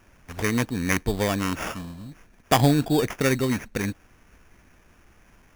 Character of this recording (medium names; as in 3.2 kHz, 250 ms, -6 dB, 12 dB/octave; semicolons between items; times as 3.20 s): aliases and images of a low sample rate 4.1 kHz, jitter 0%